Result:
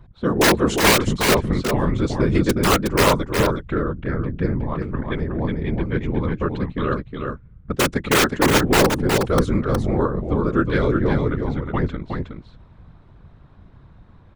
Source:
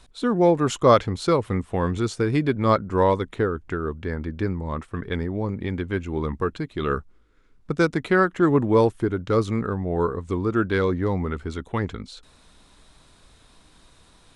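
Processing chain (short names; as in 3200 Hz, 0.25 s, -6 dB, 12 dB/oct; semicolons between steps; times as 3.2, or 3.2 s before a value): low-pass opened by the level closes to 1400 Hz, open at -16 dBFS; low shelf 91 Hz +9.5 dB; wrapped overs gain 9.5 dB; whisperiser; on a send: echo 0.365 s -5 dB; on the sum: gain +1 dB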